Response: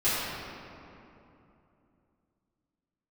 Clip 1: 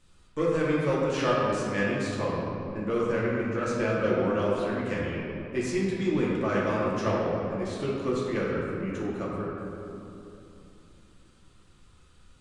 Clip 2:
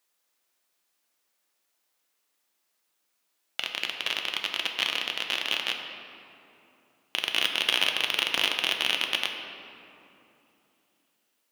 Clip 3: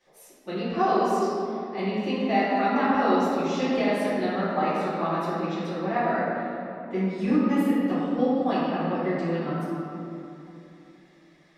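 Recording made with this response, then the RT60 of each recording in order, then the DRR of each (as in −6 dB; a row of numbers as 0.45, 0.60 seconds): 3; 2.9, 2.9, 2.9 seconds; −6.5, 3.0, −14.5 decibels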